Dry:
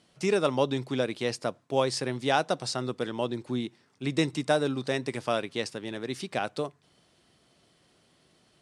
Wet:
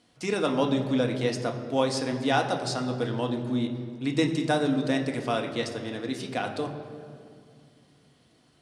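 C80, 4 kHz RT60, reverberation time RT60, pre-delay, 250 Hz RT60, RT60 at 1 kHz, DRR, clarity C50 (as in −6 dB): 9.0 dB, 1.4 s, 2.3 s, 3 ms, 3.2 s, 2.2 s, 3.0 dB, 8.5 dB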